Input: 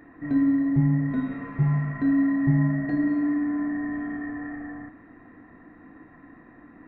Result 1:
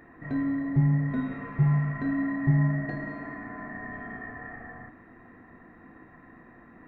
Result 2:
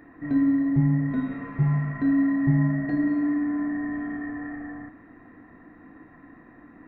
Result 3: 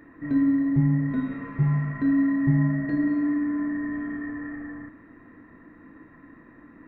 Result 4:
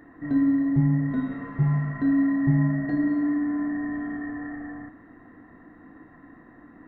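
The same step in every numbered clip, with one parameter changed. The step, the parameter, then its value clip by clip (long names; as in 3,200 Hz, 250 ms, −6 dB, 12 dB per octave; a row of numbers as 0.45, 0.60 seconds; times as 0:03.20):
notch filter, centre frequency: 290, 7,900, 740, 2,400 Hertz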